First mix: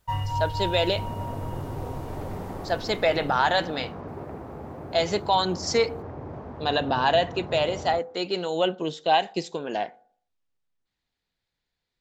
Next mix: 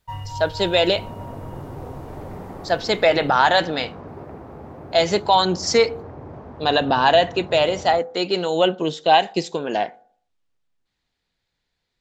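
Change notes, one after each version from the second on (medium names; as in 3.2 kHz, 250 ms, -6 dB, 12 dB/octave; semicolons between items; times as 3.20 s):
speech +6.0 dB; first sound -4.0 dB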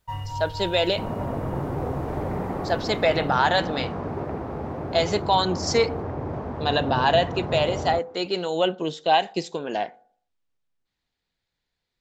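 speech -4.5 dB; second sound +7.0 dB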